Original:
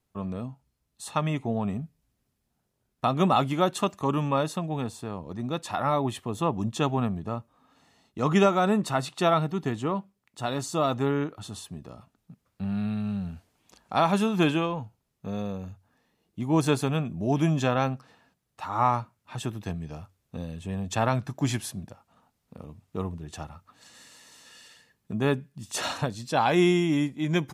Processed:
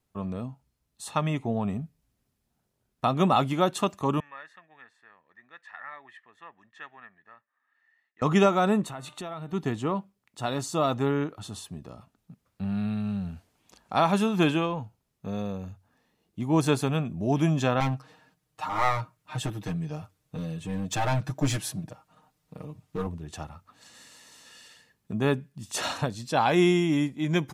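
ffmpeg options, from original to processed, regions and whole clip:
-filter_complex "[0:a]asettb=1/sr,asplit=3[a][b][c];[a]atrim=end=4.204[d];[b]atrim=start=4.2:end=8.22,asetpts=PTS-STARTPTS,afade=t=in:d=0.004:c=qsin,afade=t=out:st=4.016:d=0.004:c=qsin,bandpass=f=1.8k:t=q:w=13,acontrast=39[e];[c]atrim=start=8.216[f];[d][e]acrossfade=d=0.004:c1=hsin:c2=qsin[g];[g][f]acrossfade=d=0.004:c1=qsin:c2=hsin,asettb=1/sr,asplit=3[h][i][j];[h]atrim=end=8.834[k];[i]atrim=start=8.83:end=9.53,asetpts=PTS-STARTPTS,afade=t=in:d=0.004:c=qsin,afade=t=out:st=0.696:d=0.004:c=qsin,equalizer=f=5k:w=5.2:g=-11.5,bandreject=f=300.1:t=h:w=4,bandreject=f=600.2:t=h:w=4,bandreject=f=900.3:t=h:w=4,bandreject=f=1.2004k:t=h:w=4,bandreject=f=1.5005k:t=h:w=4,bandreject=f=1.8006k:t=h:w=4,bandreject=f=2.1007k:t=h:w=4,bandreject=f=2.4008k:t=h:w=4,bandreject=f=2.7009k:t=h:w=4,bandreject=f=3.001k:t=h:w=4,bandreject=f=3.3011k:t=h:w=4,bandreject=f=3.6012k:t=h:w=4,bandreject=f=3.9013k:t=h:w=4,acompressor=threshold=-36dB:ratio=4:attack=3.2:release=140:knee=1:detection=peak[l];[j]atrim=start=9.526[m];[k][l]acrossfade=d=0.004:c1=hsin:c2=qsin[n];[n][m]acrossfade=d=0.004:c1=qsin:c2=hsin,asettb=1/sr,asplit=3[o][p][q];[o]atrim=end=17.804[r];[p]atrim=start=17.8:end=23.07,asetpts=PTS-STARTPTS,afade=t=in:d=0.004:c=qsin,afade=t=out:st=5.266:d=0.004:c=qsin,aeval=exprs='clip(val(0),-1,0.0422)':c=same,aecho=1:1:6.5:0.87,atrim=end_sample=232407[s];[q]atrim=start=23.066[t];[r][s]acrossfade=d=0.004:c1=hsin:c2=qsin[u];[u][t]acrossfade=d=0.004:c1=qsin:c2=hsin"

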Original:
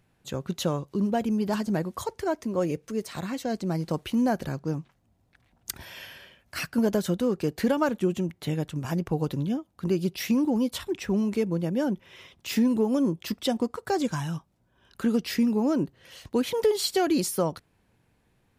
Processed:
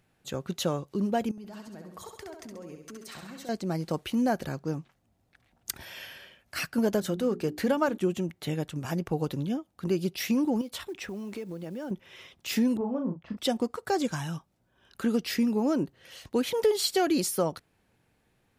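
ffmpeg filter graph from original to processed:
-filter_complex "[0:a]asettb=1/sr,asplit=3[a][b][c];[a]atrim=end=1.314[d];[b]atrim=start=1.31:end=3.49,asetpts=PTS-STARTPTS,afade=t=in:d=0.004:c=qsin,afade=t=out:st=2.176:d=0.004:c=qsin,acompressor=threshold=-39dB:ratio=12:attack=3.2:release=140:knee=1:detection=peak,aecho=1:1:67|134|201|268|335|402:0.531|0.26|0.127|0.0625|0.0306|0.015,atrim=end_sample=96138[e];[c]atrim=start=3.486[f];[d][e]acrossfade=d=0.004:c1=hsin:c2=qsin[g];[g][f]acrossfade=d=0.004:c1=qsin:c2=hsin,asettb=1/sr,asplit=3[h][i][j];[h]atrim=end=7.004[k];[i]atrim=start=7:end=7.98,asetpts=PTS-STARTPTS,afade=t=in:d=0.004:c=qsin,afade=t=out:st=0.976:d=0.004:c=qsin,bandreject=f=60:t=h:w=6,bandreject=f=120:t=h:w=6,bandreject=f=180:t=h:w=6,bandreject=f=240:t=h:w=6,bandreject=f=300:t=h:w=6,bandreject=f=360:t=h:w=6,bandreject=f=420:t=h:w=6,adynamicequalizer=threshold=0.01:dfrequency=2000:dqfactor=0.7:tfrequency=2000:tqfactor=0.7:attack=5:release=100:ratio=0.375:range=2:mode=cutabove:tftype=highshelf[l];[j]atrim=start=7.976[m];[k][l]acrossfade=d=0.004:c1=hsin:c2=qsin[n];[n][m]acrossfade=d=0.004:c1=qsin:c2=hsin,asettb=1/sr,asplit=3[o][p][q];[o]atrim=end=10.614[r];[p]atrim=start=10.61:end=11.91,asetpts=PTS-STARTPTS,afade=t=in:d=0.004:c=qsin,afade=t=out:st=1.296:d=0.004:c=qsin,bass=f=250:g=-4,treble=f=4k:g=-3,acompressor=threshold=-32dB:ratio=5:attack=3.2:release=140:knee=1:detection=peak,acrusher=bits=8:mode=log:mix=0:aa=0.000001[s];[q]atrim=start=11.906[t];[r][s]acrossfade=d=0.004:c1=hsin:c2=qsin[u];[u][t]acrossfade=d=0.004:c1=qsin:c2=hsin,asettb=1/sr,asplit=3[v][w][x];[v]atrim=end=12.774[y];[w]atrim=start=12.77:end=13.37,asetpts=PTS-STARTPTS,afade=t=in:d=0.004:c=qsin,afade=t=out:st=0.596:d=0.004:c=qsin,lowpass=1k,equalizer=f=360:t=o:w=0.8:g=-11.5,asplit=2[z][aa];[aa]adelay=34,volume=-5dB[ab];[z][ab]amix=inputs=2:normalize=0,atrim=end_sample=26460[ac];[x]atrim=start=13.366[ad];[y][ac]acrossfade=d=0.004:c1=hsin:c2=qsin[ae];[ae][ad]acrossfade=d=0.004:c1=qsin:c2=hsin,lowshelf=f=230:g=-5,bandreject=f=1k:w=15"

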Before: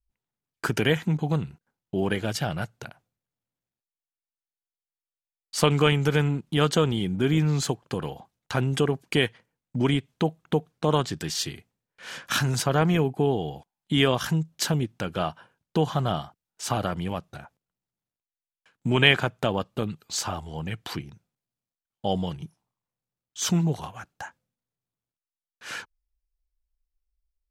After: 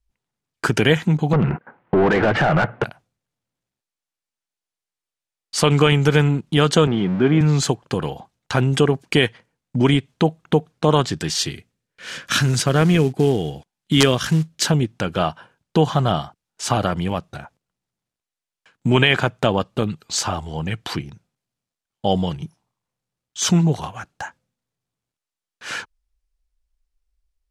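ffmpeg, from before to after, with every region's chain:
-filter_complex "[0:a]asettb=1/sr,asplit=3[a][b][c];[a]atrim=end=1.334[d];[b]atrim=start=1.33:end=2.84,asetpts=PTS-STARTPTS,afade=t=in:d=0.004:c=qsin,afade=t=out:st=1.506:d=0.004:c=qsin,lowpass=f=2.2k:w=0.5412,lowpass=f=2.2k:w=1.3066,acompressor=threshold=-35dB:ratio=5:attack=3.2:release=140:knee=1:detection=peak,asplit=2[e][f];[f]highpass=f=720:p=1,volume=38dB,asoftclip=type=tanh:threshold=-13dB[g];[e][g]amix=inputs=2:normalize=0,lowpass=f=1.1k:p=1,volume=-6dB[h];[c]atrim=start=2.836[i];[d][h]acrossfade=d=0.004:c1=hsin:c2=qsin[j];[j][i]acrossfade=d=0.004:c1=qsin:c2=hsin,asettb=1/sr,asplit=3[k][l][m];[k]atrim=end=6.874[n];[l]atrim=start=6.87:end=7.41,asetpts=PTS-STARTPTS,afade=t=in:d=0.004:c=qsin,afade=t=out:st=0.536:d=0.004:c=qsin,aeval=exprs='val(0)+0.5*0.0237*sgn(val(0))':c=same,highpass=150,lowpass=2.1k[o];[m]atrim=start=7.406[p];[n][o]acrossfade=d=0.004:c1=hsin:c2=qsin[q];[q][p]acrossfade=d=0.004:c1=qsin:c2=hsin,asettb=1/sr,asplit=3[r][s][t];[r]atrim=end=11.514[u];[s]atrim=start=11.51:end=14.65,asetpts=PTS-STARTPTS,afade=t=in:d=0.004:c=qsin,afade=t=out:st=3.136:d=0.004:c=qsin,equalizer=f=860:t=o:w=0.84:g=-8,acrusher=bits=6:mode=log:mix=0:aa=0.000001,aeval=exprs='(mod(2.99*val(0)+1,2)-1)/2.99':c=same[v];[t]atrim=start=14.646[w];[u][v]acrossfade=d=0.004:c1=hsin:c2=qsin[x];[x][w]acrossfade=d=0.004:c1=qsin:c2=hsin,lowpass=10k,alimiter=level_in=8dB:limit=-1dB:release=50:level=0:latency=1,volume=-1dB"

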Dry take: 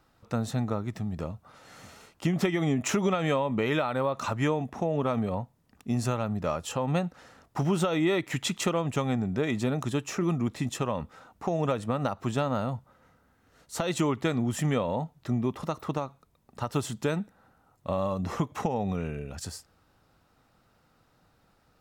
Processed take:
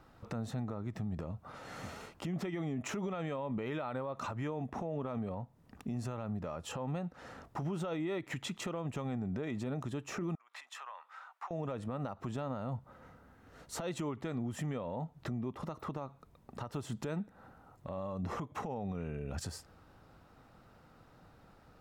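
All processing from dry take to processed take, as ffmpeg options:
-filter_complex "[0:a]asettb=1/sr,asplit=3[a][b][c];[a]atrim=end=10.354[d];[b]atrim=start=10.35:end=11.51,asetpts=PTS-STARTPTS,afade=t=in:d=0.004:c=qsin,afade=t=out:st=1.156:d=0.004:c=qsin,acompressor=threshold=-36dB:ratio=16:attack=3.2:release=140:knee=1:detection=peak,highpass=f=1k:w=0.5412,highpass=f=1k:w=1.3066,highshelf=f=3.6k:g=-10.5[e];[c]atrim=start=11.506[f];[d][e]acrossfade=d=0.004:c1=hsin:c2=qsin[g];[g][f]acrossfade=d=0.004:c1=qsin:c2=hsin,acompressor=threshold=-39dB:ratio=6,highshelf=f=2.7k:g=-9,alimiter=level_in=11.5dB:limit=-24dB:level=0:latency=1:release=49,volume=-11.5dB,volume=6dB"

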